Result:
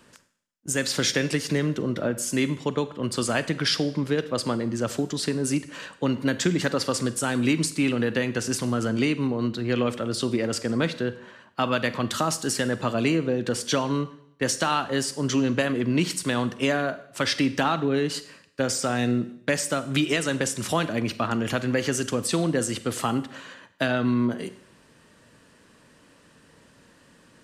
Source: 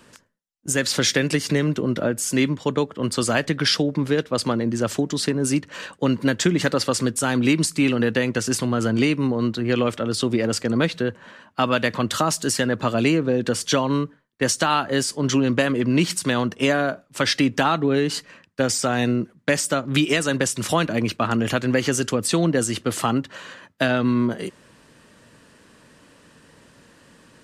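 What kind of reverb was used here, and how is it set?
four-comb reverb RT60 0.69 s, combs from 33 ms, DRR 13 dB
level −4 dB

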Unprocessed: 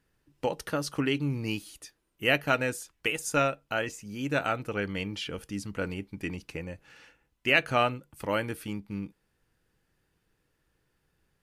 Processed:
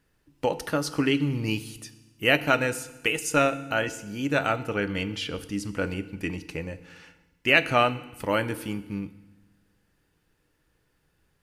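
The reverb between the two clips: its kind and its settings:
feedback delay network reverb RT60 1.1 s, low-frequency decay 1.4×, high-frequency decay 1×, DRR 12.5 dB
level +3.5 dB

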